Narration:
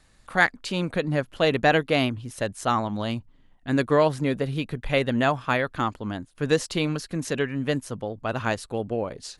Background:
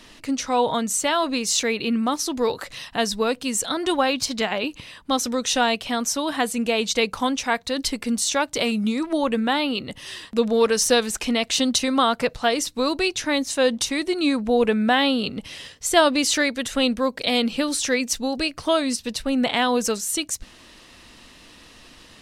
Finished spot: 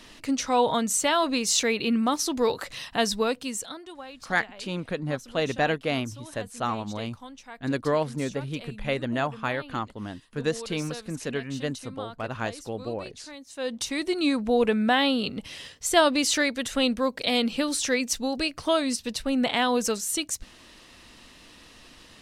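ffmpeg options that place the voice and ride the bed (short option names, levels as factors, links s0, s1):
-filter_complex "[0:a]adelay=3950,volume=0.562[s0];[1:a]volume=6.68,afade=t=out:st=3.13:d=0.72:silence=0.105925,afade=t=in:st=13.48:d=0.59:silence=0.125893[s1];[s0][s1]amix=inputs=2:normalize=0"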